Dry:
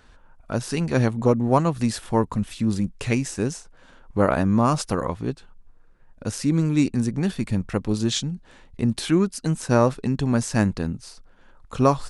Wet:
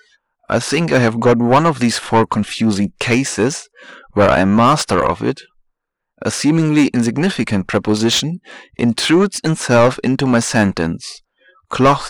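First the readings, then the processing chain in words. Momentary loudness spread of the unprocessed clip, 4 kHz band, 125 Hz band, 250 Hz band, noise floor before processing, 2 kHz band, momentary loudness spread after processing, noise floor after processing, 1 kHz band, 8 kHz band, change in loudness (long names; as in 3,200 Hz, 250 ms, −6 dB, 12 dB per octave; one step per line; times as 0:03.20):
11 LU, +12.5 dB, +4.5 dB, +7.5 dB, −52 dBFS, +13.5 dB, 10 LU, −74 dBFS, +10.5 dB, +9.5 dB, +8.0 dB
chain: noise reduction from a noise print of the clip's start 29 dB
mid-hump overdrive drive 23 dB, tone 3,100 Hz, clips at −3.5 dBFS
level +2 dB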